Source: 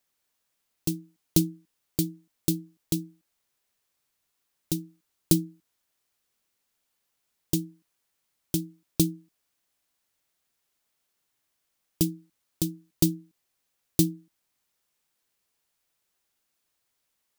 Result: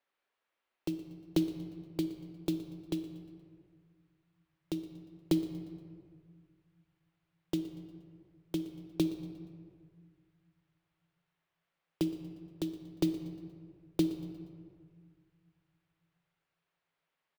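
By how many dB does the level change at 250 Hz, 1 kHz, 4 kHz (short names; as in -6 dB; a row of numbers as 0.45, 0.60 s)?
-4.5, +0.5, -9.0 dB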